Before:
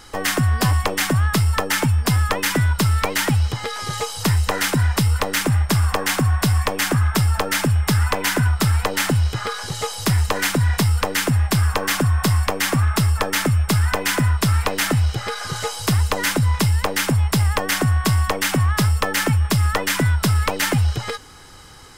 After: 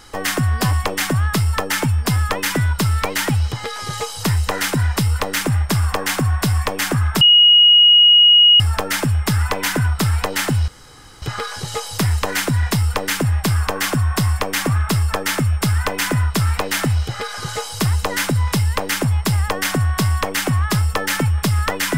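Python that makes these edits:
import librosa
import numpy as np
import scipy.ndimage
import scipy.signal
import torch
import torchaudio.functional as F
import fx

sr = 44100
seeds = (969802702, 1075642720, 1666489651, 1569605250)

y = fx.edit(x, sr, fx.insert_tone(at_s=7.21, length_s=1.39, hz=2890.0, db=-6.5),
    fx.insert_room_tone(at_s=9.29, length_s=0.54), tone=tone)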